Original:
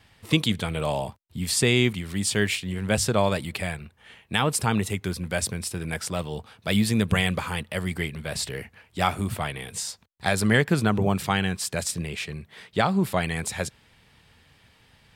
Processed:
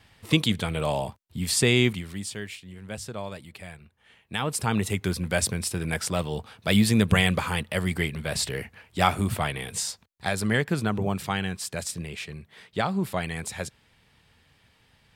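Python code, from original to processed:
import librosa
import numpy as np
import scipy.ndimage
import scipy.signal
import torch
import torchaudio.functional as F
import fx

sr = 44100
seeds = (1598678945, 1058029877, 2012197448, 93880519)

y = fx.gain(x, sr, db=fx.line((1.92, 0.0), (2.42, -13.0), (3.55, -13.0), (4.4, -5.5), (5.01, 2.0), (9.84, 2.0), (10.33, -4.0)))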